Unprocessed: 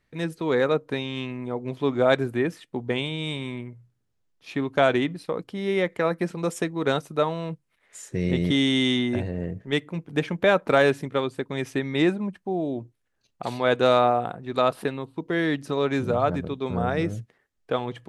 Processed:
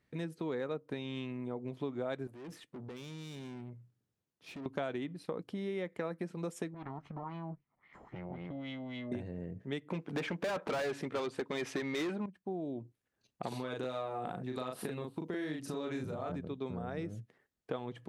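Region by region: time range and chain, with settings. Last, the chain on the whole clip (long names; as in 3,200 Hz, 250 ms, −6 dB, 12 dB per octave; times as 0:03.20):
0:02.27–0:04.66: high-pass filter 60 Hz + downward compressor 5 to 1, threshold −30 dBFS + tube saturation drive 40 dB, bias 0.35
0:06.74–0:09.12: lower of the sound and its delayed copy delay 0.96 ms + downward compressor, threshold −38 dBFS + auto-filter low-pass sine 3.7 Hz 740–2,700 Hz
0:09.90–0:12.26: high-shelf EQ 7,800 Hz −11 dB + mid-hump overdrive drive 28 dB, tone 7,800 Hz, clips at −6.5 dBFS
0:13.48–0:16.32: high-shelf EQ 5,000 Hz +7.5 dB + downward compressor 3 to 1, threshold −27 dBFS + double-tracking delay 39 ms −2.5 dB
whole clip: low-shelf EQ 350 Hz +10.5 dB; downward compressor 6 to 1, threshold −28 dBFS; high-pass filter 220 Hz 6 dB per octave; level −5.5 dB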